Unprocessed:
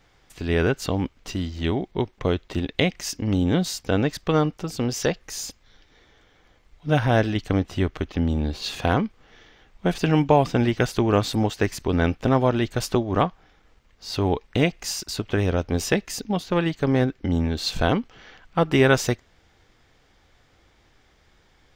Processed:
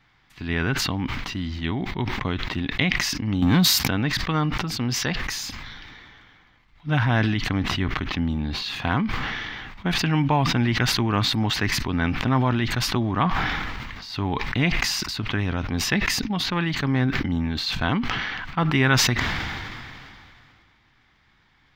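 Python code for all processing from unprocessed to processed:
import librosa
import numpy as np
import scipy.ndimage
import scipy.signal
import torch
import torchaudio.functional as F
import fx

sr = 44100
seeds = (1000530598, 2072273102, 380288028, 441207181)

y = fx.chain(x, sr, fx.highpass(hz=48.0, slope=24),
    fx.peak_eq(hz=13000.0, db=14.5, octaves=1.1),
    fx.leveller(passes=2), at=(3.42, 3.88))
y = fx.graphic_eq(y, sr, hz=(125, 250, 500, 1000, 2000, 4000, 8000), db=(7, 6, -8, 8, 8, 6, -7))
y = fx.sustainer(y, sr, db_per_s=24.0)
y = F.gain(torch.from_numpy(y), -7.5).numpy()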